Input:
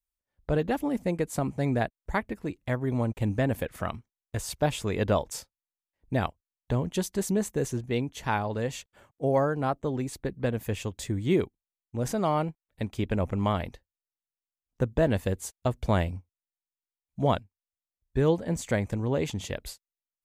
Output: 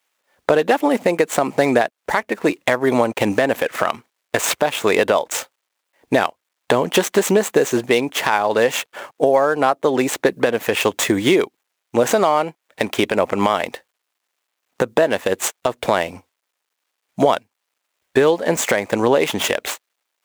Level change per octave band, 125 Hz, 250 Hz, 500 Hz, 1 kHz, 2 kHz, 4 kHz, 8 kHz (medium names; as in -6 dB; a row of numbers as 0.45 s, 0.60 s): -2.5 dB, +8.0 dB, +12.5 dB, +12.5 dB, +15.5 dB, +15.5 dB, +14.0 dB